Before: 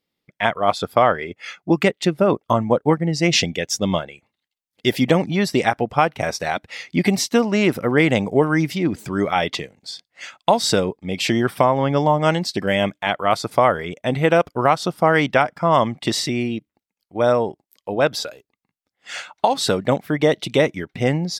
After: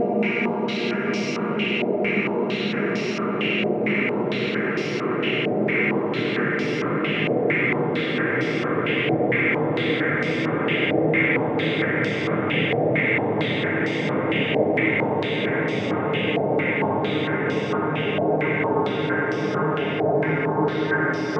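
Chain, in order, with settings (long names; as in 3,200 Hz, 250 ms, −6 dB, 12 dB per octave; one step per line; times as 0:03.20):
extreme stretch with random phases 23×, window 1.00 s, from 0:07.54
low-pass on a step sequencer 4.4 Hz 700–5,200 Hz
level −6.5 dB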